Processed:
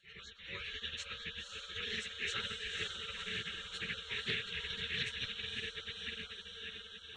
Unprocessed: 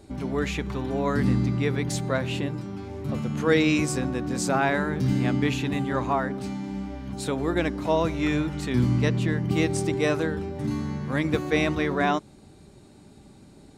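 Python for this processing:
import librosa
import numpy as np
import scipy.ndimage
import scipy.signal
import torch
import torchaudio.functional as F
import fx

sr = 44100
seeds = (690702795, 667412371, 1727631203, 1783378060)

p1 = fx.fade_out_tail(x, sr, length_s=3.82)
p2 = fx.cabinet(p1, sr, low_hz=190.0, low_slope=24, high_hz=4000.0, hz=(570.0, 1200.0, 1900.0, 3200.0), db=(8, -7, 3, -4))
p3 = fx.tremolo_random(p2, sr, seeds[0], hz=3.5, depth_pct=55)
p4 = scipy.signal.sosfilt(scipy.signal.cheby2(4, 40, [480.0, 1100.0], 'bandstop', fs=sr, output='sos'), p3)
p5 = p4 + fx.echo_diffused(p4, sr, ms=1007, feedback_pct=67, wet_db=-3.5, dry=0)
p6 = fx.stretch_vocoder_free(p5, sr, factor=0.52)
p7 = fx.peak_eq(p6, sr, hz=430.0, db=-3.0, octaves=3.0)
p8 = fx.fixed_phaser(p7, sr, hz=1000.0, stages=8)
p9 = fx.spec_gate(p8, sr, threshold_db=-25, keep='weak')
p10 = fx.doppler_dist(p9, sr, depth_ms=0.18)
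y = F.gain(torch.from_numpy(p10), 17.5).numpy()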